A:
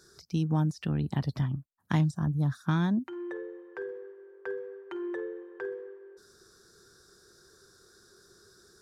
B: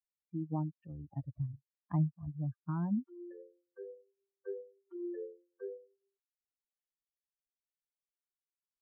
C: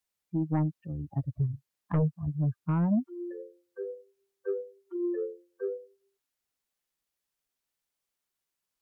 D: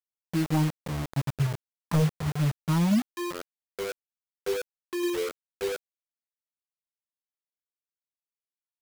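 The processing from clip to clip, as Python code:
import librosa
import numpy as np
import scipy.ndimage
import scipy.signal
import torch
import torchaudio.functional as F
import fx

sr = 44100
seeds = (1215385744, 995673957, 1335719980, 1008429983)

y1 = fx.bin_expand(x, sr, power=3.0)
y1 = scipy.signal.sosfilt(scipy.signal.butter(4, 1100.0, 'lowpass', fs=sr, output='sos'), y1)
y1 = y1 * librosa.db_to_amplitude(-2.5)
y2 = fx.fold_sine(y1, sr, drive_db=6, ceiling_db=-21.5)
y3 = fx.quant_dither(y2, sr, seeds[0], bits=6, dither='none')
y3 = y3 * librosa.db_to_amplitude(2.5)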